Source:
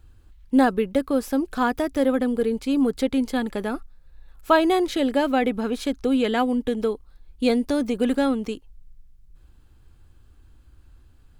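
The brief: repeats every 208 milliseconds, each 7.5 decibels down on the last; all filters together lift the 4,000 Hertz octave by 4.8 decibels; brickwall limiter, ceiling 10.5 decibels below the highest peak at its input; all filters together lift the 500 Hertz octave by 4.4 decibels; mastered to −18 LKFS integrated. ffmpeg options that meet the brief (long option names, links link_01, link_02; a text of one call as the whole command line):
ffmpeg -i in.wav -af "equalizer=frequency=500:width_type=o:gain=5,equalizer=frequency=4000:width_type=o:gain=6,alimiter=limit=-13dB:level=0:latency=1,aecho=1:1:208|416|624|832|1040:0.422|0.177|0.0744|0.0312|0.0131,volume=4.5dB" out.wav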